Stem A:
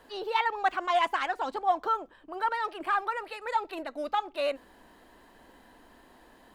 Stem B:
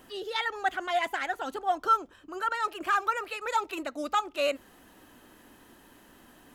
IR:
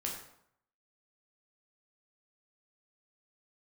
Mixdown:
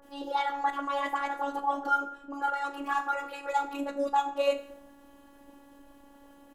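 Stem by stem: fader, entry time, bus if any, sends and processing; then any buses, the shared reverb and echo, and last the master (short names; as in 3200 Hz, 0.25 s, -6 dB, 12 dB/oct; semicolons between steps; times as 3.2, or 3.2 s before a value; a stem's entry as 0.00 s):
+1.5 dB, 0.00 s, send -5.5 dB, Bessel low-pass 870 Hz, order 8
-1.5 dB, 18 ms, polarity flipped, send -10 dB, expander -53 dBFS; auto duck -6 dB, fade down 0.20 s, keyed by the first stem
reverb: on, RT60 0.70 s, pre-delay 8 ms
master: robotiser 281 Hz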